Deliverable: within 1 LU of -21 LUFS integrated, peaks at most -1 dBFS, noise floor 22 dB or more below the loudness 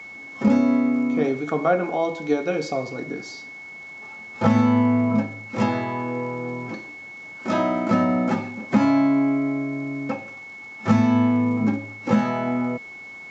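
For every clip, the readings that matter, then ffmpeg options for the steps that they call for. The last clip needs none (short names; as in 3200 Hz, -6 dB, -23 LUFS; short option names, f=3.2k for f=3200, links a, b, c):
steady tone 2200 Hz; tone level -37 dBFS; loudness -22.5 LUFS; peak -3.5 dBFS; loudness target -21.0 LUFS
-> -af "bandreject=f=2.2k:w=30"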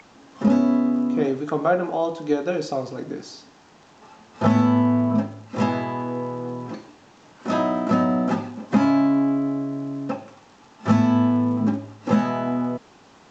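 steady tone none; loudness -22.5 LUFS; peak -3.5 dBFS; loudness target -21.0 LUFS
-> -af "volume=1.5dB"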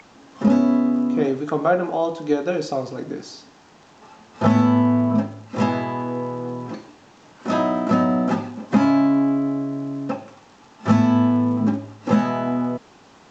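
loudness -21.0 LUFS; peak -2.0 dBFS; noise floor -50 dBFS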